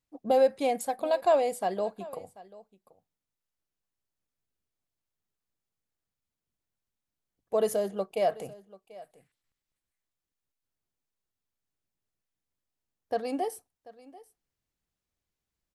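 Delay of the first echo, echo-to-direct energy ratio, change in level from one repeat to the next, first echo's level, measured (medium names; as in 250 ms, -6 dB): 738 ms, -20.0 dB, no regular repeats, -20.0 dB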